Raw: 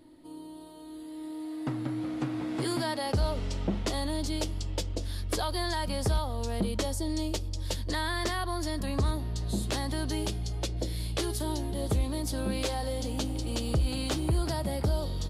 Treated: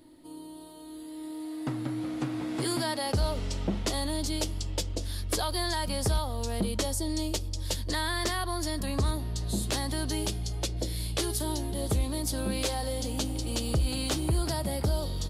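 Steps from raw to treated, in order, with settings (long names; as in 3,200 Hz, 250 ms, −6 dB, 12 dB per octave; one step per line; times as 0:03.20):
high-shelf EQ 4,800 Hz +6.5 dB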